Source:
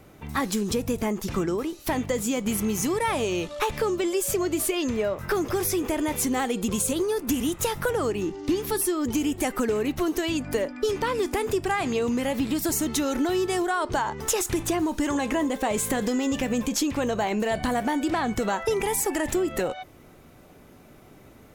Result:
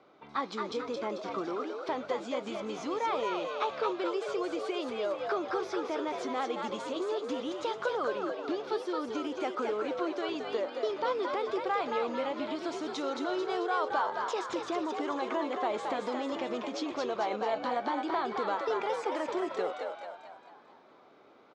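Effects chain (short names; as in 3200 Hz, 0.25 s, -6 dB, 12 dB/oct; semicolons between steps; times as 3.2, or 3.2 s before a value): speaker cabinet 400–4200 Hz, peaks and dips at 1200 Hz +4 dB, 1800 Hz -8 dB, 2700 Hz -7 dB; frequency-shifting echo 0.221 s, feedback 49%, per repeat +76 Hz, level -4.5 dB; gain -5 dB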